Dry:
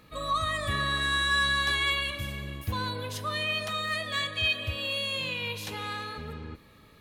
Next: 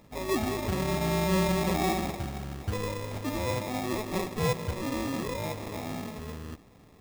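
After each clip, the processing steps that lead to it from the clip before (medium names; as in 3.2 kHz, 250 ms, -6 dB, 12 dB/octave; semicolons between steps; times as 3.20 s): sample-rate reducer 1.5 kHz, jitter 0%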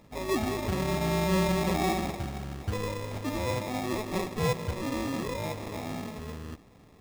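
treble shelf 11 kHz -4.5 dB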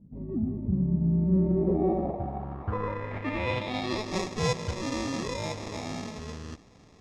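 low-pass sweep 200 Hz -> 6.1 kHz, 1.10–4.19 s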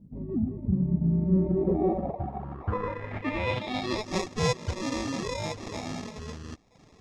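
reverb removal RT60 0.71 s; trim +2 dB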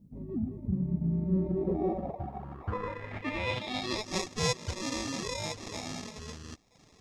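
treble shelf 2.8 kHz +9 dB; trim -5 dB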